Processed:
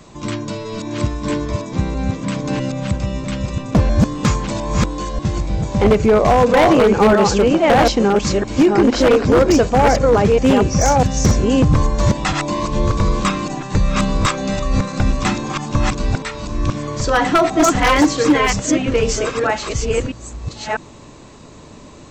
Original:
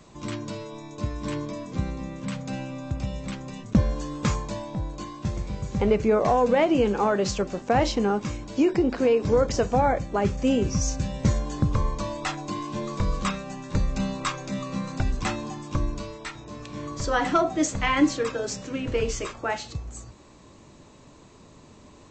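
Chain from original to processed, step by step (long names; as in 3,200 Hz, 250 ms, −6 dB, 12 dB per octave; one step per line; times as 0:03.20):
delay that plays each chunk backwards 649 ms, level −2 dB
wave folding −14 dBFS
level +8.5 dB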